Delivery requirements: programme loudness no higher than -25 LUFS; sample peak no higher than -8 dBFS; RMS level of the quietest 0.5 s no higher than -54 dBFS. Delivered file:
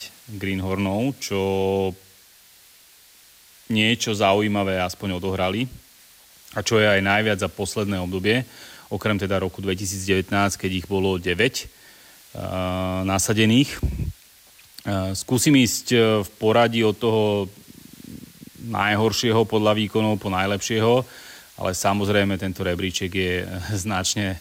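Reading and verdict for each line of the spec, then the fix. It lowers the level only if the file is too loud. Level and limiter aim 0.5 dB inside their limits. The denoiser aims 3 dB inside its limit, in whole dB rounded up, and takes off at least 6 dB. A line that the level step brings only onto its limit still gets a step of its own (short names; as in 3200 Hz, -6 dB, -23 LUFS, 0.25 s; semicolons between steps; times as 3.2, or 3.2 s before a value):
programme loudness -22.0 LUFS: fail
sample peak -6.5 dBFS: fail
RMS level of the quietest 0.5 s -52 dBFS: fail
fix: gain -3.5 dB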